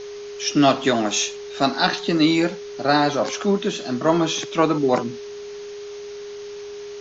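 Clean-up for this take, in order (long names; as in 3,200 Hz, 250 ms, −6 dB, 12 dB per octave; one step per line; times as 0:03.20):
notch filter 410 Hz, Q 30
broadband denoise 30 dB, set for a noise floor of −35 dBFS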